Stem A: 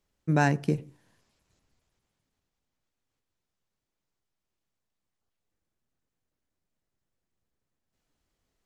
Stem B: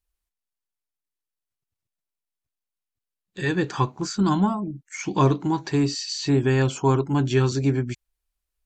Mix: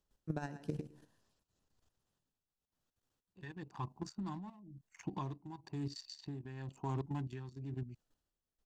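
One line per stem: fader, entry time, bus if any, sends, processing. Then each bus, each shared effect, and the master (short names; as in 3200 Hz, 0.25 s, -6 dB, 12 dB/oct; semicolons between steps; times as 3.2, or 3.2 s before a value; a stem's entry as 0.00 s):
+2.0 dB, 0.00 s, no send, echo send -13 dB, bell 2200 Hz -11 dB 0.27 oct; compressor 1.5:1, threshold -31 dBFS, peak gain reduction 5 dB
-12.5 dB, 0.00 s, no send, no echo send, Wiener smoothing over 25 samples; comb 1.1 ms, depth 44%; three-band squash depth 40%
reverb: off
echo: feedback echo 0.109 s, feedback 21%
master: level quantiser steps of 12 dB; tremolo 1 Hz, depth 71%; Doppler distortion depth 0.18 ms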